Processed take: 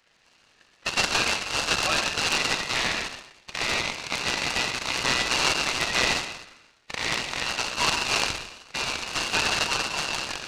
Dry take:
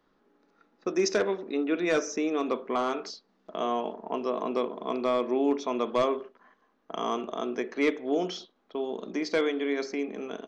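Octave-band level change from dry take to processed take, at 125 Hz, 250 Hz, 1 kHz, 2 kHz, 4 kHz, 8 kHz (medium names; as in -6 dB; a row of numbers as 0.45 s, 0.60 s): +10.0 dB, -8.5 dB, +3.5 dB, +12.5 dB, +16.5 dB, no reading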